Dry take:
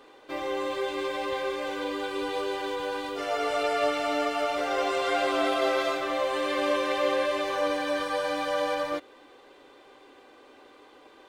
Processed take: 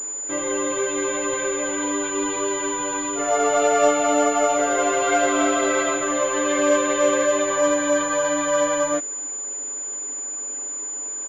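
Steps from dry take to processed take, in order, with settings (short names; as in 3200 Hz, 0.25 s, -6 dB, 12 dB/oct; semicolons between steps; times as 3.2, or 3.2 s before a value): comb 7 ms, depth 89%; pulse-width modulation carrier 7000 Hz; gain +4 dB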